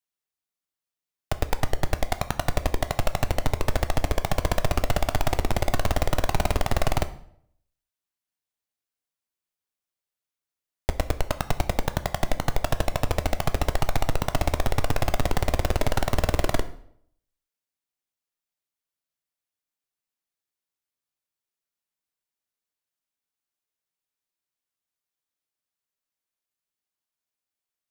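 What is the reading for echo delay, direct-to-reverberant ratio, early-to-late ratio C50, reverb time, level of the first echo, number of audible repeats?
no echo audible, 9.5 dB, 15.5 dB, 0.65 s, no echo audible, no echo audible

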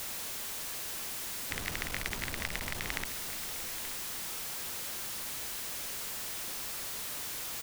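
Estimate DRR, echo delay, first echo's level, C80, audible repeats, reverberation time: no reverb audible, 880 ms, −13.5 dB, no reverb audible, 1, no reverb audible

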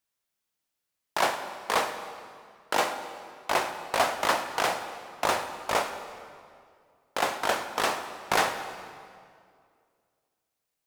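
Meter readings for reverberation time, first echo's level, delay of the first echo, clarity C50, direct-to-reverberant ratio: 2.2 s, no echo audible, no echo audible, 8.5 dB, 7.0 dB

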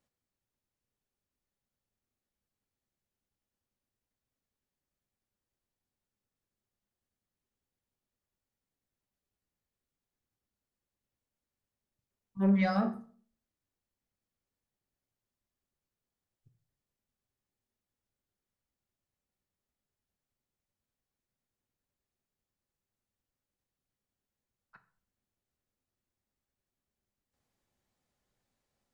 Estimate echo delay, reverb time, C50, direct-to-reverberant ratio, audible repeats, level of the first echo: no echo audible, 0.45 s, 14.5 dB, 7.5 dB, no echo audible, no echo audible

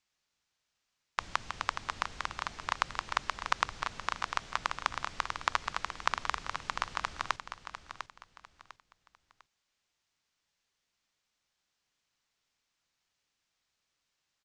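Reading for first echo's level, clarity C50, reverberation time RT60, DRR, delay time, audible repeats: −9.5 dB, no reverb audible, no reverb audible, no reverb audible, 700 ms, 3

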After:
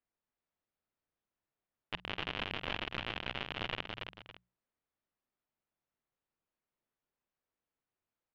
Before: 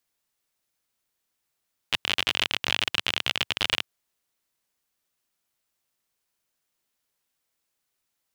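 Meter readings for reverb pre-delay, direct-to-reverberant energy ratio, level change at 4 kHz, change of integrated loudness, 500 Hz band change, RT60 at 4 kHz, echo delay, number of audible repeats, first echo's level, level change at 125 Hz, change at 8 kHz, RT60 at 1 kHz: no reverb audible, no reverb audible, −15.5 dB, −13.5 dB, −5.0 dB, no reverb audible, 48 ms, 3, −19.5 dB, −4.0 dB, below −25 dB, no reverb audible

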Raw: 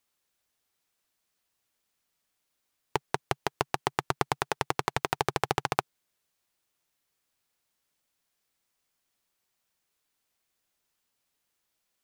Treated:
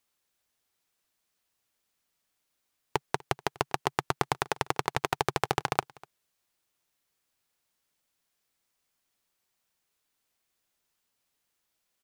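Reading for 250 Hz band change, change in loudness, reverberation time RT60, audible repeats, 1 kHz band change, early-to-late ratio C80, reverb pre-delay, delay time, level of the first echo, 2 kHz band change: 0.0 dB, 0.0 dB, no reverb audible, 1, 0.0 dB, no reverb audible, no reverb audible, 246 ms, −24.0 dB, 0.0 dB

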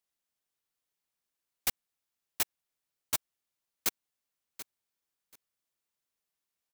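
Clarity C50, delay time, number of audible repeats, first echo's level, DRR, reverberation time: no reverb audible, 734 ms, 2, −14.0 dB, no reverb audible, no reverb audible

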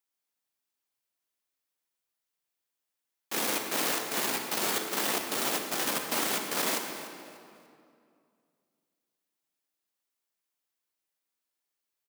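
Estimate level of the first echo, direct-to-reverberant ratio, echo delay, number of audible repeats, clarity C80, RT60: −16.0 dB, 3.5 dB, 295 ms, 2, 5.5 dB, 2.4 s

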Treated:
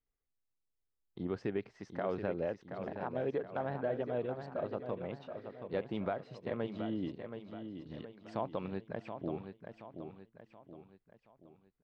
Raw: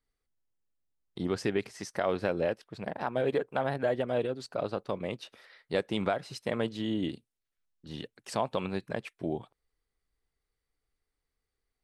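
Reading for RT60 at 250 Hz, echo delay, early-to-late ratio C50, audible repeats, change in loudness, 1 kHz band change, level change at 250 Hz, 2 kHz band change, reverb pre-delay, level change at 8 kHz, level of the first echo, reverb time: no reverb audible, 726 ms, no reverb audible, 4, −6.5 dB, −6.5 dB, −5.0 dB, −9.5 dB, no reverb audible, below −20 dB, −8.0 dB, no reverb audible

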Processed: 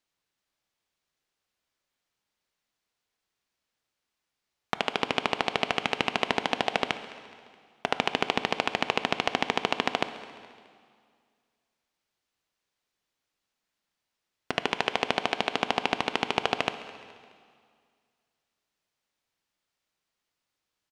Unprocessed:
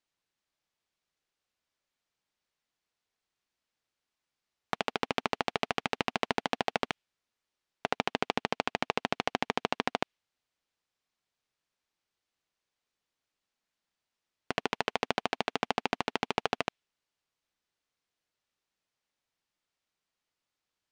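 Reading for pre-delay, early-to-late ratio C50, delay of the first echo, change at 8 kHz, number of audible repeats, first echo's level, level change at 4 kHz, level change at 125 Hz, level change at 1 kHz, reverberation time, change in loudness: 10 ms, 11.5 dB, 211 ms, +3.5 dB, 3, −19.5 dB, +6.5 dB, +3.0 dB, +3.5 dB, 2.1 s, +4.5 dB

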